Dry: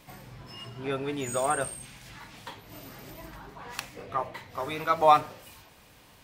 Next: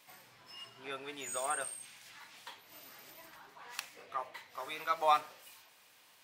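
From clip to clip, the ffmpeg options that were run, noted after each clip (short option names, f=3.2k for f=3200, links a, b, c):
-af "highpass=f=1.3k:p=1,volume=-4dB"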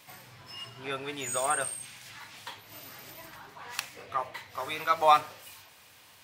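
-af "equalizer=f=92:t=o:w=1.3:g=14,volume=7dB"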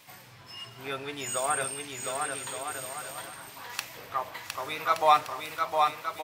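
-af "aecho=1:1:710|1172|1471|1666|1793:0.631|0.398|0.251|0.158|0.1"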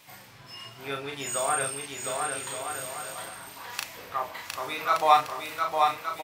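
-filter_complex "[0:a]asplit=2[a][b];[b]adelay=36,volume=-4dB[c];[a][c]amix=inputs=2:normalize=0"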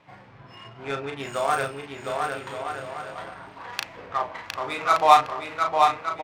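-af "adynamicsmooth=sensitivity=3.5:basefreq=1.6k,volume=4.5dB"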